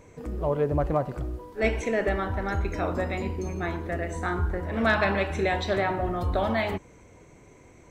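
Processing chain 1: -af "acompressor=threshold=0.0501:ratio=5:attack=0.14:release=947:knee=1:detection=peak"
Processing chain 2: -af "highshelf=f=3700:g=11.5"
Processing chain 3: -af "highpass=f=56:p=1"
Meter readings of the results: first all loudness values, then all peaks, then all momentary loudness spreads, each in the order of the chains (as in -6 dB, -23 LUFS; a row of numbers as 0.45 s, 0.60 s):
-35.0 LUFS, -27.0 LUFS, -28.0 LUFS; -23.0 dBFS, -8.5 dBFS, -11.0 dBFS; 15 LU, 7 LU, 7 LU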